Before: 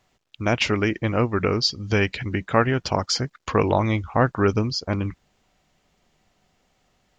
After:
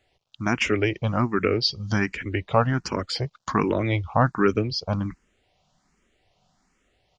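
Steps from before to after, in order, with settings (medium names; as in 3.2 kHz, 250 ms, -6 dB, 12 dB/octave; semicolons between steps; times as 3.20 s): resampled via 22.05 kHz; barber-pole phaser +1.3 Hz; trim +1.5 dB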